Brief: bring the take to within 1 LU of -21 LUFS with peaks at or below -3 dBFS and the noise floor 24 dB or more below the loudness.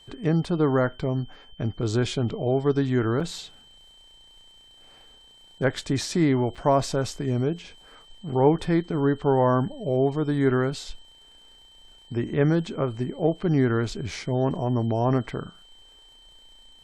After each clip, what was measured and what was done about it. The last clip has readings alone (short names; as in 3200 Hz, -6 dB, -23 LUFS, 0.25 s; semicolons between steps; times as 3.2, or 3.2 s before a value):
dropouts 2; longest dropout 3.6 ms; steady tone 3100 Hz; tone level -51 dBFS; loudness -25.0 LUFS; peak -7.5 dBFS; loudness target -21.0 LUFS
-> interpolate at 3.2/6.55, 3.6 ms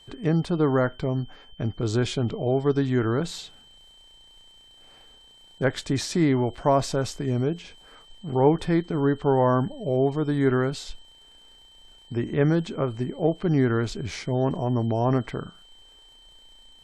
dropouts 0; steady tone 3100 Hz; tone level -51 dBFS
-> notch 3100 Hz, Q 30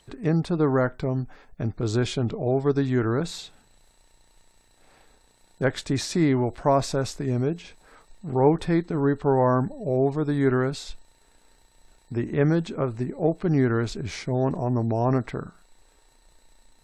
steady tone none; loudness -25.0 LUFS; peak -7.5 dBFS; loudness target -21.0 LUFS
-> gain +4 dB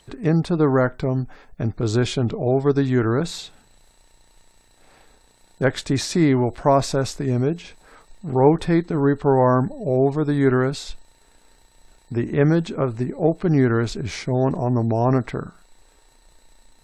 loudness -21.0 LUFS; peak -3.5 dBFS; noise floor -57 dBFS